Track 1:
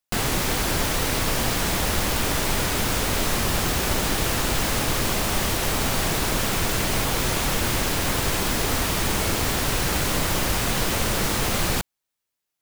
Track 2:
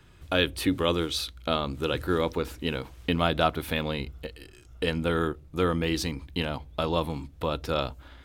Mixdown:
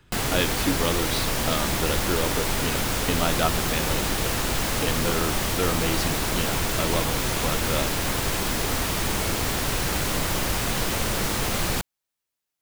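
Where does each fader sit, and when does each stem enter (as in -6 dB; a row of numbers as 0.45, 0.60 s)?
-2.0, -1.0 dB; 0.00, 0.00 s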